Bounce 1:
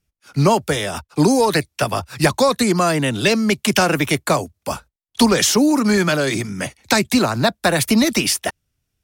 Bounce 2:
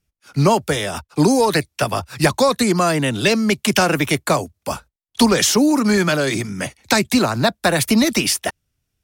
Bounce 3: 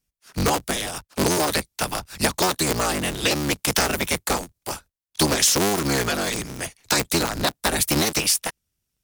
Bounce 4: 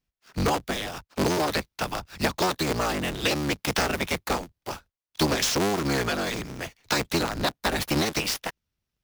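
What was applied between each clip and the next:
no audible change
cycle switcher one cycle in 3, inverted; treble shelf 3.8 kHz +9.5 dB; trim -7.5 dB
median filter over 5 samples; trim -2.5 dB

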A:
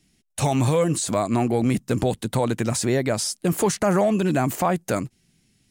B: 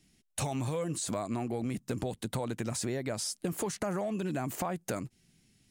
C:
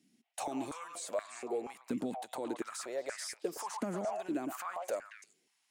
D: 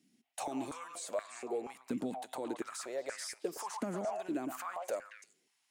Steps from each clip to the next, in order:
compression 6:1, threshold -28 dBFS, peak gain reduction 11.5 dB; trim -3 dB
repeats whose band climbs or falls 113 ms, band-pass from 920 Hz, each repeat 1.4 oct, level -1.5 dB; step-sequenced high-pass 4.2 Hz 240–1700 Hz; trim -7.5 dB
feedback comb 130 Hz, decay 0.6 s, harmonics all, mix 30%; trim +2 dB

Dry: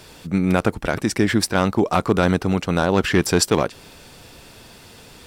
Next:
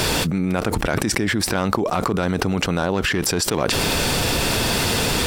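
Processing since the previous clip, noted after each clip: level flattener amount 100%; trim -7 dB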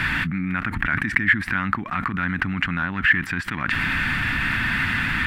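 FFT filter 270 Hz 0 dB, 460 Hz -24 dB, 1.8 kHz +14 dB, 5.6 kHz -20 dB, 12 kHz -18 dB; trim -4 dB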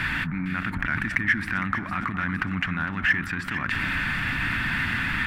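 in parallel at -11 dB: overload inside the chain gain 14.5 dB; on the sum: echo whose repeats swap between lows and highs 229 ms, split 1.2 kHz, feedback 74%, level -8 dB; trim -6 dB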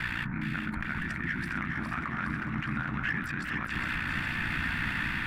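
peak limiter -18 dBFS, peak gain reduction 11.5 dB; ring modulator 30 Hz; echo whose repeats swap between lows and highs 206 ms, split 1.4 kHz, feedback 77%, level -3.5 dB; trim -3 dB

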